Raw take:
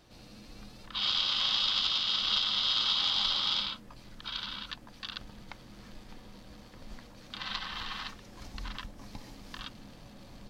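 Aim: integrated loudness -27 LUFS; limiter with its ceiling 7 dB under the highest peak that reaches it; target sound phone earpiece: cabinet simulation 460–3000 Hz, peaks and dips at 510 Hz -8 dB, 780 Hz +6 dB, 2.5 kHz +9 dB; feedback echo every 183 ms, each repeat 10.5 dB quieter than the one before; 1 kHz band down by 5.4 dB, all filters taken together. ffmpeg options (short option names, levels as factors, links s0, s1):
-af "equalizer=f=1000:t=o:g=-8.5,alimiter=limit=0.0794:level=0:latency=1,highpass=460,equalizer=f=510:t=q:w=4:g=-8,equalizer=f=780:t=q:w=4:g=6,equalizer=f=2500:t=q:w=4:g=9,lowpass=f=3000:w=0.5412,lowpass=f=3000:w=1.3066,aecho=1:1:183|366|549:0.299|0.0896|0.0269,volume=2.82"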